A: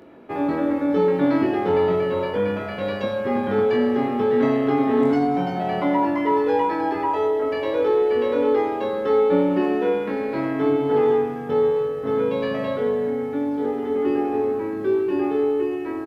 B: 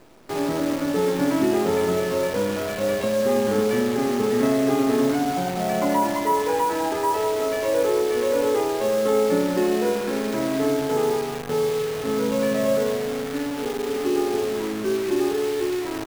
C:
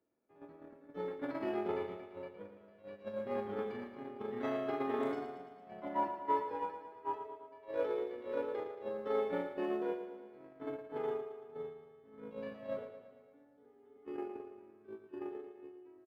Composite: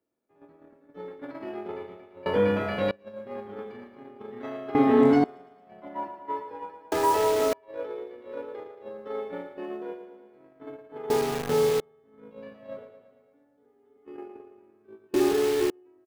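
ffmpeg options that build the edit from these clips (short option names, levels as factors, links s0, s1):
-filter_complex "[0:a]asplit=2[s0][s1];[1:a]asplit=3[s2][s3][s4];[2:a]asplit=6[s5][s6][s7][s8][s9][s10];[s5]atrim=end=2.262[s11];[s0]atrim=start=2.258:end=2.912[s12];[s6]atrim=start=2.908:end=4.752[s13];[s1]atrim=start=4.748:end=5.242[s14];[s7]atrim=start=5.238:end=6.922[s15];[s2]atrim=start=6.918:end=7.532[s16];[s8]atrim=start=7.528:end=11.102[s17];[s3]atrim=start=11.098:end=11.802[s18];[s9]atrim=start=11.798:end=15.142[s19];[s4]atrim=start=15.138:end=15.702[s20];[s10]atrim=start=15.698[s21];[s11][s12]acrossfade=d=0.004:c1=hsin:c2=hsin[s22];[s22][s13]acrossfade=d=0.004:c1=hsin:c2=hsin[s23];[s23][s14]acrossfade=d=0.004:c1=hsin:c2=hsin[s24];[s24][s15]acrossfade=d=0.004:c1=hsin:c2=hsin[s25];[s25][s16]acrossfade=d=0.004:c1=hsin:c2=hsin[s26];[s26][s17]acrossfade=d=0.004:c1=hsin:c2=hsin[s27];[s27][s18]acrossfade=d=0.004:c1=hsin:c2=hsin[s28];[s28][s19]acrossfade=d=0.004:c1=hsin:c2=hsin[s29];[s29][s20]acrossfade=d=0.004:c1=hsin:c2=hsin[s30];[s30][s21]acrossfade=d=0.004:c1=hsin:c2=hsin"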